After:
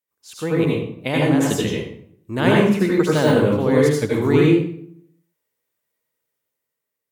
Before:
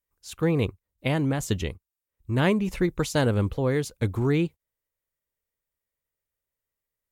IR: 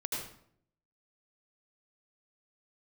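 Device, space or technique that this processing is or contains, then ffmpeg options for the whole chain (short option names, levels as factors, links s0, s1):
far laptop microphone: -filter_complex "[0:a]asettb=1/sr,asplit=3[s0][s1][s2];[s0]atrim=end=2.714[s3];[s1]atrim=start=2.71:end=3.86,asetpts=PTS-STARTPTS,afade=t=in:d=0.004:c=qsin,afade=t=out:st=1.146:d=0.004:c=qsin,deesser=0.75[s4];[s2]atrim=start=3.856[s5];[s3][s4]acrossfade=d=0.004:c1=hsin:c2=qsin[s6];[s6][s5]acrossfade=d=0.004:c1=qsin:c2=hsin[s7];[1:a]atrim=start_sample=2205[s8];[s7][s8]afir=irnorm=-1:irlink=0,highpass=180,dynaudnorm=f=280:g=7:m=2,volume=1.12"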